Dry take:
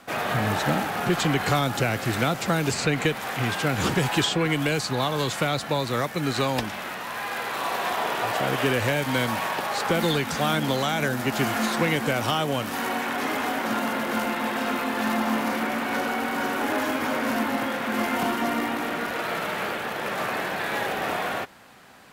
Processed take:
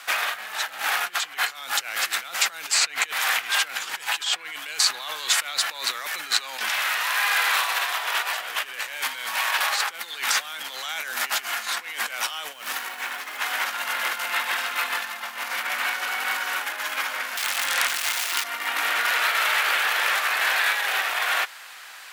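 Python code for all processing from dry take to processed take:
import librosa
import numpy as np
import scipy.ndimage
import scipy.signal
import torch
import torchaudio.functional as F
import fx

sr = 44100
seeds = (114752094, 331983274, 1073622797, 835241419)

y = fx.chain(x, sr, fx.highpass(hz=54.0, slope=12),
    fx.low_shelf(hz=430.0, db=8.5),
    fx.quant_companded(bits=6), at=(12.53, 13.4))
y = fx.chain(y, sr, fx.lowpass(hz=9800.0, slope=12),
    fx.high_shelf(hz=5200.0, db=8.5),
    fx.overflow_wrap(gain_db=19.0), at=(17.37, 18.44))
y = fx.over_compress(y, sr, threshold_db=-29.0, ratio=-0.5)
y = scipy.signal.sosfilt(scipy.signal.butter(2, 1500.0, 'highpass', fs=sr, output='sos'), y)
y = F.gain(torch.from_numpy(y), 8.5).numpy()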